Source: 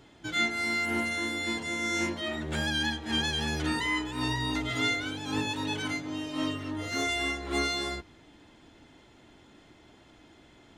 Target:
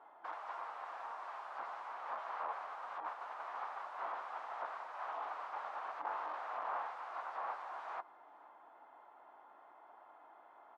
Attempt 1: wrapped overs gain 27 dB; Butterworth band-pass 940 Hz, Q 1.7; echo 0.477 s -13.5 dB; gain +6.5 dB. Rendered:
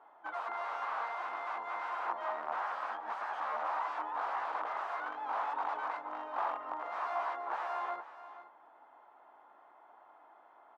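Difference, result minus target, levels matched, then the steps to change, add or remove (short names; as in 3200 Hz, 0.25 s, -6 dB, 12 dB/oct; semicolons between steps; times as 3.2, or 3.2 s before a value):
wrapped overs: distortion -25 dB; echo-to-direct +11 dB
change: wrapped overs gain 33.5 dB; change: echo 0.477 s -24.5 dB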